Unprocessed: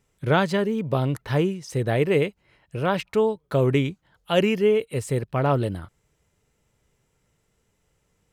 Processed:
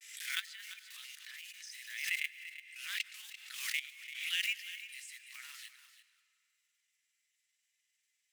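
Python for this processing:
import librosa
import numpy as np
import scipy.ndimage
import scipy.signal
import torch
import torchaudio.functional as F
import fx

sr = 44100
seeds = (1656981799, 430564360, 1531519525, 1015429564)

p1 = fx.block_float(x, sr, bits=5)
p2 = scipy.signal.sosfilt(scipy.signal.ellip(4, 1.0, 70, 1900.0, 'highpass', fs=sr, output='sos'), p1)
p3 = fx.level_steps(p2, sr, step_db=16)
p4 = fx.granulator(p3, sr, seeds[0], grain_ms=100.0, per_s=20.0, spray_ms=22.0, spread_st=0)
p5 = p4 + fx.echo_single(p4, sr, ms=341, db=-13.0, dry=0)
p6 = fx.rev_freeverb(p5, sr, rt60_s=2.6, hf_ratio=0.9, predelay_ms=70, drr_db=16.5)
y = fx.pre_swell(p6, sr, db_per_s=63.0)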